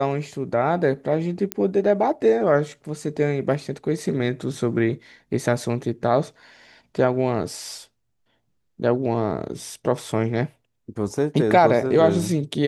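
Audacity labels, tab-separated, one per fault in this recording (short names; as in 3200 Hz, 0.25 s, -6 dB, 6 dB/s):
1.520000	1.520000	pop -7 dBFS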